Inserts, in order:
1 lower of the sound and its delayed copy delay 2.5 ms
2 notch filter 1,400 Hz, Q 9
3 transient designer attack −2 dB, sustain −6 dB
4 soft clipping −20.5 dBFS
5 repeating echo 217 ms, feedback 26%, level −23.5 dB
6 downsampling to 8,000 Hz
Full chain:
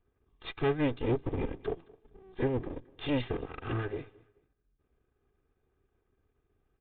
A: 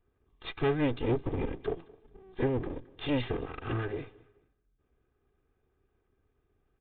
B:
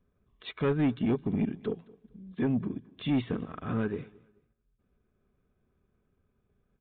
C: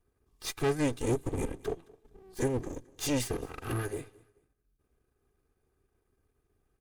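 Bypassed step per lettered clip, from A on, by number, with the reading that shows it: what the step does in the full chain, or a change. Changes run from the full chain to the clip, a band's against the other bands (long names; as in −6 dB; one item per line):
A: 3, change in momentary loudness spread −1 LU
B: 1, 250 Hz band +6.5 dB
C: 6, 4 kHz band +3.5 dB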